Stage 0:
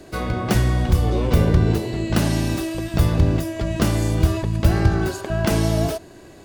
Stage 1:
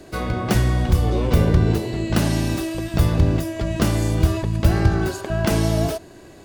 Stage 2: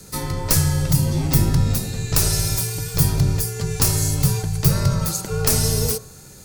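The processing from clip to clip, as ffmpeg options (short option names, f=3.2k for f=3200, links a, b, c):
-af anull
-af "afreqshift=-210,bandreject=f=60.91:t=h:w=4,bandreject=f=121.82:t=h:w=4,bandreject=f=182.73:t=h:w=4,bandreject=f=243.64:t=h:w=4,bandreject=f=304.55:t=h:w=4,bandreject=f=365.46:t=h:w=4,bandreject=f=426.37:t=h:w=4,bandreject=f=487.28:t=h:w=4,bandreject=f=548.19:t=h:w=4,bandreject=f=609.1:t=h:w=4,bandreject=f=670.01:t=h:w=4,bandreject=f=730.92:t=h:w=4,bandreject=f=791.83:t=h:w=4,bandreject=f=852.74:t=h:w=4,bandreject=f=913.65:t=h:w=4,bandreject=f=974.56:t=h:w=4,bandreject=f=1.03547k:t=h:w=4,bandreject=f=1.09638k:t=h:w=4,bandreject=f=1.15729k:t=h:w=4,bandreject=f=1.2182k:t=h:w=4,bandreject=f=1.27911k:t=h:w=4,bandreject=f=1.34002k:t=h:w=4,bandreject=f=1.40093k:t=h:w=4,bandreject=f=1.46184k:t=h:w=4,bandreject=f=1.52275k:t=h:w=4,bandreject=f=1.58366k:t=h:w=4,bandreject=f=1.64457k:t=h:w=4,bandreject=f=1.70548k:t=h:w=4,bandreject=f=1.76639k:t=h:w=4,aexciter=amount=5.7:drive=2.9:freq=4.5k,volume=-1dB"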